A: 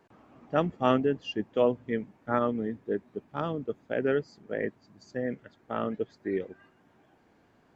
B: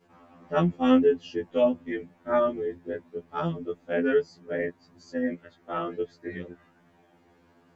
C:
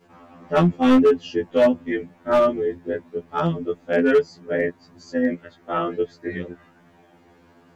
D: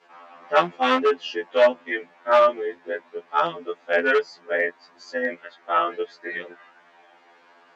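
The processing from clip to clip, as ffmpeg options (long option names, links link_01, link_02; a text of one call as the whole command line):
ffmpeg -i in.wav -af "adynamicequalizer=threshold=0.00891:dfrequency=1000:dqfactor=0.85:tfrequency=1000:tqfactor=0.85:attack=5:release=100:ratio=0.375:range=2.5:mode=cutabove:tftype=bell,afftfilt=real='re*2*eq(mod(b,4),0)':imag='im*2*eq(mod(b,4),0)':win_size=2048:overlap=0.75,volume=5dB" out.wav
ffmpeg -i in.wav -af "asoftclip=type=hard:threshold=-17.5dB,volume=7dB" out.wav
ffmpeg -i in.wav -af "highpass=750,lowpass=4700,volume=5.5dB" out.wav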